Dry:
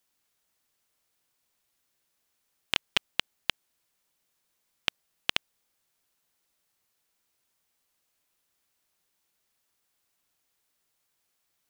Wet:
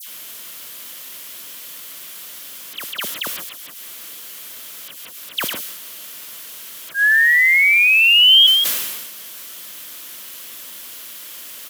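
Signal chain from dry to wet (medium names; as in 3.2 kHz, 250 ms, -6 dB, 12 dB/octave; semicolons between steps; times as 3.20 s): painted sound rise, 6.89–8.45 s, 1.6–3.3 kHz -20 dBFS; distance through air 180 m; delay 174 ms -11 dB; added noise white -46 dBFS; graphic EQ with 31 bands 400 Hz -4 dB, 800 Hz -9 dB, 3.15 kHz +6 dB, 12.5 kHz +8 dB; slow attack 102 ms; high-pass 210 Hz 12 dB/octave; phase dispersion lows, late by 78 ms, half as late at 2 kHz; decay stretcher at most 39 dB/s; trim +8 dB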